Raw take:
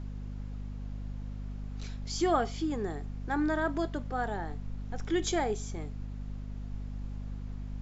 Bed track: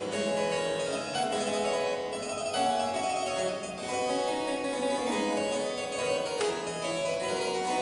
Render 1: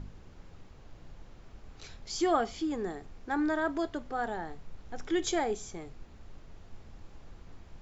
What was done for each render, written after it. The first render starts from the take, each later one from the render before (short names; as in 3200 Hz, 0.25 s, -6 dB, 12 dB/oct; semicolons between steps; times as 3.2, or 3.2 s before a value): de-hum 50 Hz, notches 5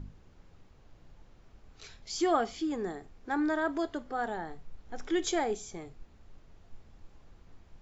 noise print and reduce 6 dB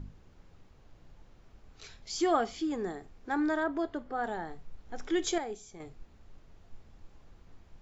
3.63–4.23 LPF 1800 Hz -> 2800 Hz 6 dB/oct; 5.38–5.8 gain -7 dB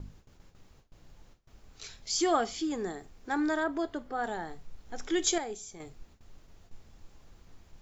gate with hold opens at -46 dBFS; high shelf 4600 Hz +11.5 dB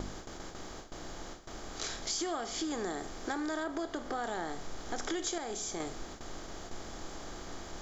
per-bin compression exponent 0.6; compressor 10:1, threshold -32 dBFS, peak gain reduction 12.5 dB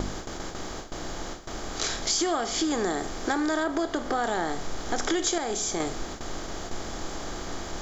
gain +9 dB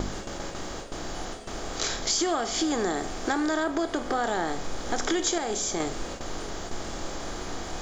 add bed track -16 dB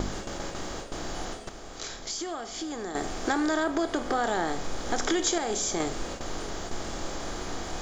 1.49–2.95 gain -8.5 dB